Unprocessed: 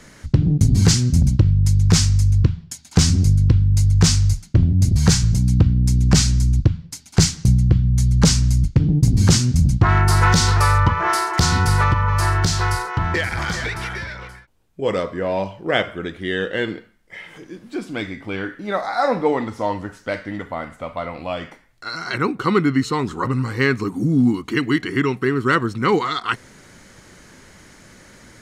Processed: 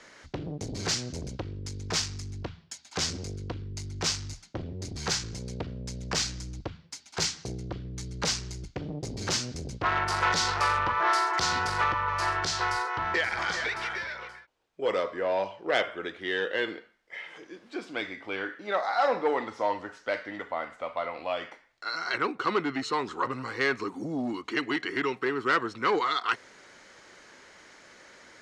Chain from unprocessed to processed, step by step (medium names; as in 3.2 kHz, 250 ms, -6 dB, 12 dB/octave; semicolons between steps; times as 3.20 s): Chebyshev shaper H 5 -17 dB, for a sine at -4 dBFS; three-band isolator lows -18 dB, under 350 Hz, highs -20 dB, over 6.8 kHz; trim -8 dB